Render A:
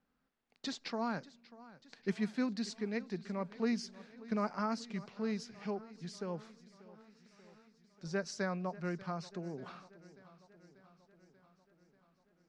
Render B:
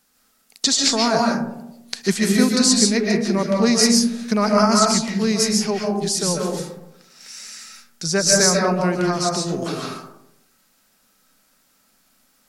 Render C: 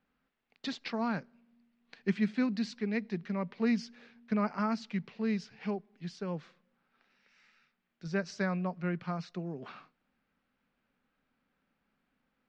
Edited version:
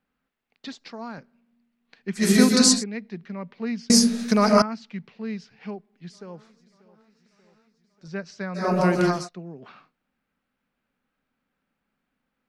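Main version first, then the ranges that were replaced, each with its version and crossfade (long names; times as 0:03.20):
C
0:00.72–0:01.18: punch in from A
0:02.21–0:02.76: punch in from B, crossfade 0.16 s
0:03.90–0:04.62: punch in from B
0:06.10–0:08.08: punch in from A
0:08.66–0:09.17: punch in from B, crossfade 0.24 s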